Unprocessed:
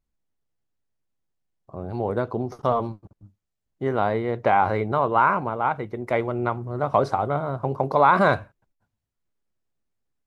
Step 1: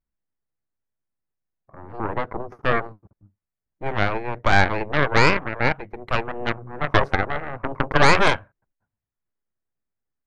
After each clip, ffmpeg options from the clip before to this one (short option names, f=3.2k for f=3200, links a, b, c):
-af "highshelf=f=2.6k:t=q:w=1.5:g=-10,aeval=exprs='0.668*(cos(1*acos(clip(val(0)/0.668,-1,1)))-cos(1*PI/2))+0.335*(cos(4*acos(clip(val(0)/0.668,-1,1)))-cos(4*PI/2))+0.0237*(cos(7*acos(clip(val(0)/0.668,-1,1)))-cos(7*PI/2))+0.106*(cos(8*acos(clip(val(0)/0.668,-1,1)))-cos(8*PI/2))':c=same,volume=-3dB"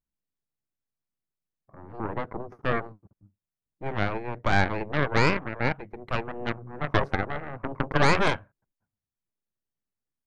-af "equalizer=f=190:t=o:w=2.2:g=5,volume=-7dB"